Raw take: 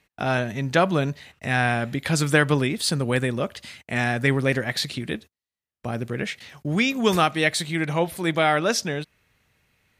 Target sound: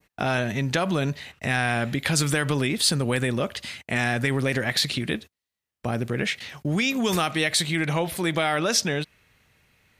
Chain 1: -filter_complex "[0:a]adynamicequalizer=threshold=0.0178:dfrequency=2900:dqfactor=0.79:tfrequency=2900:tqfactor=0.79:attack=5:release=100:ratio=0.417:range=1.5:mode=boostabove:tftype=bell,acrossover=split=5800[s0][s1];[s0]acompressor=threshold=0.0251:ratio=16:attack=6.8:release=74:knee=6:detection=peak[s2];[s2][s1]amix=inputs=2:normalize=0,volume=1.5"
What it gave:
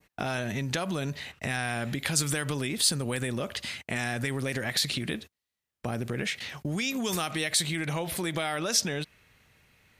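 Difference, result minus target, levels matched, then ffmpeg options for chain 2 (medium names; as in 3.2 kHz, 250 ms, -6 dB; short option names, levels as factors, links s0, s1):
compression: peak gain reduction +7.5 dB
-filter_complex "[0:a]adynamicequalizer=threshold=0.0178:dfrequency=2900:dqfactor=0.79:tfrequency=2900:tqfactor=0.79:attack=5:release=100:ratio=0.417:range=1.5:mode=boostabove:tftype=bell,acrossover=split=5800[s0][s1];[s0]acompressor=threshold=0.0631:ratio=16:attack=6.8:release=74:knee=6:detection=peak[s2];[s2][s1]amix=inputs=2:normalize=0,volume=1.5"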